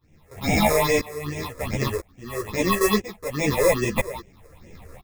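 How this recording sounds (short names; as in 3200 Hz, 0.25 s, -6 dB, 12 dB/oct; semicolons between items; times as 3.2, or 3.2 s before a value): aliases and images of a low sample rate 1500 Hz, jitter 0%; phasing stages 6, 2.4 Hz, lowest notch 210–1200 Hz; tremolo saw up 1 Hz, depth 95%; a shimmering, thickened sound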